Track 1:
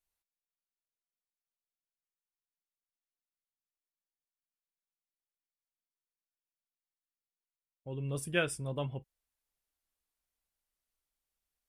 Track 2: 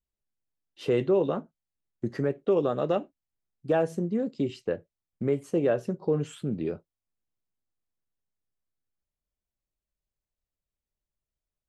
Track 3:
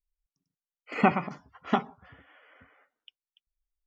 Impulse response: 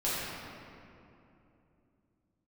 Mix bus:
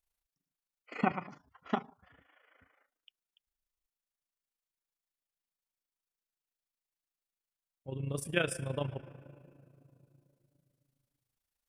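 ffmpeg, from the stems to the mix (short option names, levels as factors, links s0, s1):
-filter_complex "[0:a]volume=1.33,asplit=2[s0][s1];[s1]volume=0.0794[s2];[2:a]volume=0.531[s3];[3:a]atrim=start_sample=2205[s4];[s2][s4]afir=irnorm=-1:irlink=0[s5];[s0][s3][s5]amix=inputs=3:normalize=0,tremolo=f=27:d=0.71"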